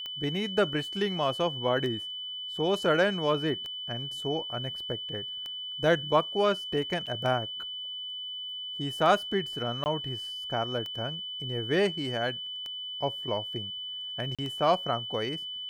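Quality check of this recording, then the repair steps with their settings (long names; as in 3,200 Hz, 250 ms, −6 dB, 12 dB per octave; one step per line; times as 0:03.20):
scratch tick 33 1/3 rpm −24 dBFS
whistle 3,000 Hz −35 dBFS
0:07.06–0:07.07: drop-out 7.1 ms
0:09.84–0:09.86: drop-out 19 ms
0:14.35–0:14.39: drop-out 36 ms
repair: click removal
notch filter 3,000 Hz, Q 30
repair the gap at 0:07.06, 7.1 ms
repair the gap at 0:09.84, 19 ms
repair the gap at 0:14.35, 36 ms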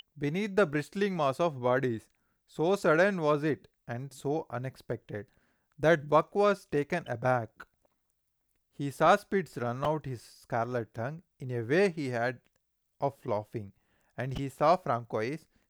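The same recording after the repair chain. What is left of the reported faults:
none of them is left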